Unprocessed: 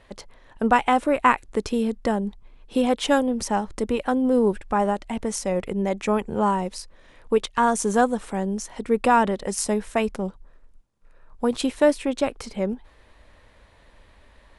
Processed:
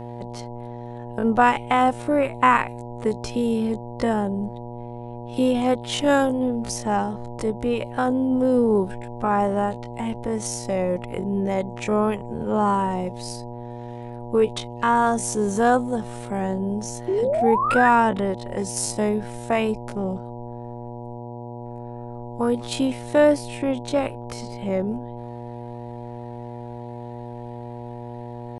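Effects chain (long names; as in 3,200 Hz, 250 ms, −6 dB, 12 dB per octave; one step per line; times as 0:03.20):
hum with harmonics 120 Hz, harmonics 8, −35 dBFS −3 dB per octave
sound drawn into the spectrogram rise, 0:08.72–0:09.13, 350–1,900 Hz −21 dBFS
tempo change 0.51×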